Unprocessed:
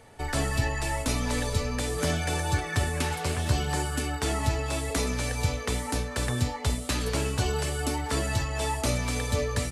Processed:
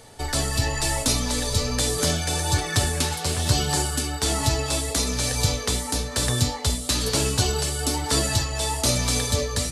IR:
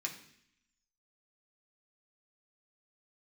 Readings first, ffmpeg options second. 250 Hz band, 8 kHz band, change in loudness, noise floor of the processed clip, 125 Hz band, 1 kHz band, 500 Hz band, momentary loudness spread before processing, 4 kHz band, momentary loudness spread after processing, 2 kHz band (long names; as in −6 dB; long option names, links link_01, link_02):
+3.0 dB, +10.0 dB, +5.5 dB, −32 dBFS, +3.0 dB, +2.5 dB, +3.0 dB, 2 LU, +9.5 dB, 3 LU, +2.0 dB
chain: -af "flanger=delay=6.2:depth=6.6:regen=-75:speed=1.1:shape=sinusoidal,tremolo=f=1.1:d=0.3,acontrast=33,highshelf=frequency=3100:width_type=q:width=1.5:gain=6.5,volume=3.5dB"